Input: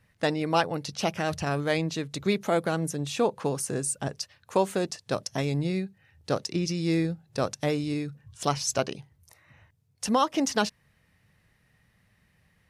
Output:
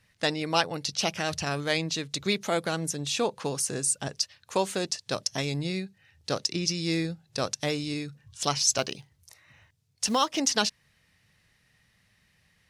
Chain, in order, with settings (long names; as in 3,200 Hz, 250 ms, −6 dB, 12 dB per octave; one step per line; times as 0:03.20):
0:08.78–0:10.39: floating-point word with a short mantissa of 4 bits
parametric band 5,000 Hz +10.5 dB 2.5 octaves
level −3.5 dB